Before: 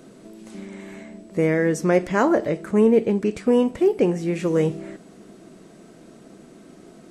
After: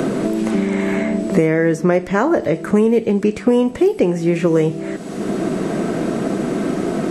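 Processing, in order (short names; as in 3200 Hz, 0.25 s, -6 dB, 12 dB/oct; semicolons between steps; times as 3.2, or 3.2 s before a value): three-band squash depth 100%; gain +4.5 dB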